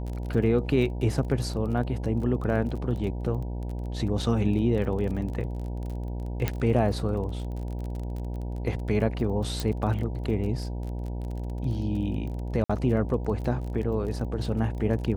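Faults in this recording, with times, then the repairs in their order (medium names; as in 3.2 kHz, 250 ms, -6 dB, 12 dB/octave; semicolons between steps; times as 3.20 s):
buzz 60 Hz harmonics 16 -32 dBFS
crackle 27 per s -34 dBFS
6.48 s: pop -12 dBFS
9.60 s: pop
12.64–12.70 s: dropout 55 ms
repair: de-click; de-hum 60 Hz, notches 16; interpolate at 12.64 s, 55 ms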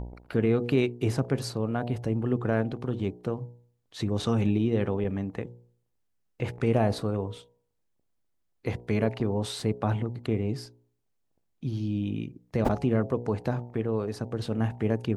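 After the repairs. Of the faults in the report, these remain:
9.60 s: pop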